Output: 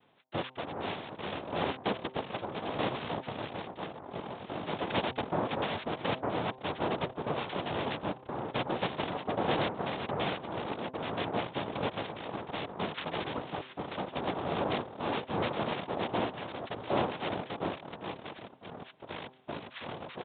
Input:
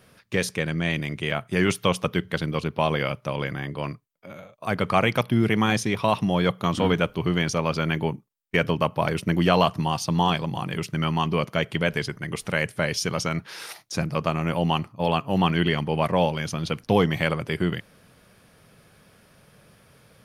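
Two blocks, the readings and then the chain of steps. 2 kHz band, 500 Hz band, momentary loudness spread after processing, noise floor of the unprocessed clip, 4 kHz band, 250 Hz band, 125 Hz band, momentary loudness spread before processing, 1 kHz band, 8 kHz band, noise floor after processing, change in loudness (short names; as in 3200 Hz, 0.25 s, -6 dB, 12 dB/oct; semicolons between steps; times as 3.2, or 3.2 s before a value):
-11.0 dB, -8.5 dB, 9 LU, -57 dBFS, -9.0 dB, -12.0 dB, -15.5 dB, 9 LU, -7.0 dB, under -40 dB, -53 dBFS, -10.5 dB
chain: reverb removal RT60 0.61 s; bell 150 Hz -3 dB; echoes that change speed 0.316 s, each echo -7 st, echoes 2, each echo -6 dB; noise vocoder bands 2; de-hum 129.3 Hz, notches 8; downsampling 8000 Hz; gain -8.5 dB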